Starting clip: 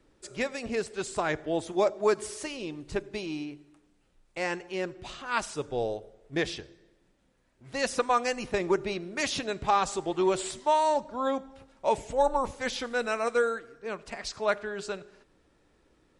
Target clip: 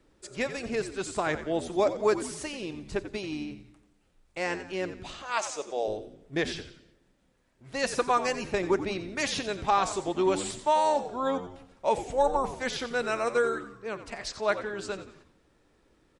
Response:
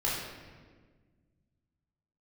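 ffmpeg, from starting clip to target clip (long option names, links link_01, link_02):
-filter_complex "[0:a]asettb=1/sr,asplit=3[link_01][link_02][link_03];[link_01]atrim=end=5.224[link_04];[link_02]atrim=start=5.22:end=5.88,asetpts=PTS-STARTPTS,afade=type=in:duration=0.004:curve=qsin,afade=type=out:start_time=0.656:duration=0.004:curve=qsin,highpass=470,equalizer=frequency=620:width_type=q:width=4:gain=7,equalizer=frequency=1500:width_type=q:width=4:gain=-4,equalizer=frequency=6600:width_type=q:width=4:gain=9,lowpass=frequency=9400:width=0.5412,lowpass=frequency=9400:width=1.3066[link_05];[link_03]atrim=start=5.876[link_06];[link_04][link_05]acrossfade=duration=0.004:curve1=hsin:curve2=qsin[link_07];[link_07][link_06]acrossfade=duration=0.004:curve1=qsin:curve2=hsin,asplit=5[link_08][link_09][link_10][link_11][link_12];[link_09]adelay=89,afreqshift=-88,volume=-12dB[link_13];[link_10]adelay=178,afreqshift=-176,volume=-19.5dB[link_14];[link_11]adelay=267,afreqshift=-264,volume=-27.1dB[link_15];[link_12]adelay=356,afreqshift=-352,volume=-34.6dB[link_16];[link_08][link_13][link_14][link_15][link_16]amix=inputs=5:normalize=0"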